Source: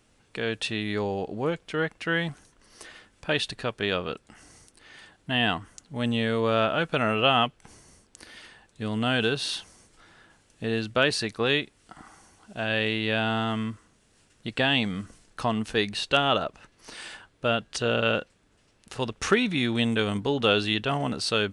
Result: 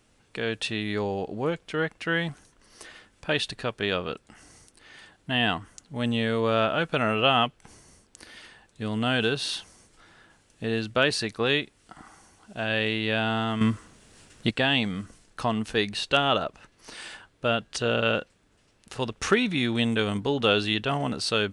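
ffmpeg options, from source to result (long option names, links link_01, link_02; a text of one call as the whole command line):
ffmpeg -i in.wav -filter_complex "[0:a]asplit=3[link_01][link_02][link_03];[link_01]atrim=end=13.612[link_04];[link_02]atrim=start=13.608:end=14.512,asetpts=PTS-STARTPTS,volume=9dB[link_05];[link_03]atrim=start=14.508[link_06];[link_04][link_05]acrossfade=duration=0.004:curve1=hsin:curve2=hsin[link_07];[link_07][link_06]acrossfade=duration=0.004:curve1=hsin:curve2=hsin" out.wav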